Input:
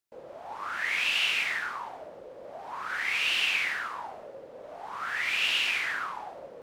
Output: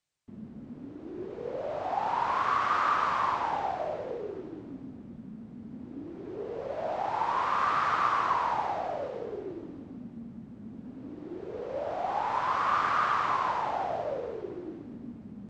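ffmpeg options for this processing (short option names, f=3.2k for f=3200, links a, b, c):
-af "equalizer=f=250:t=o:w=1.2:g=6,asetrate=18846,aresample=44100"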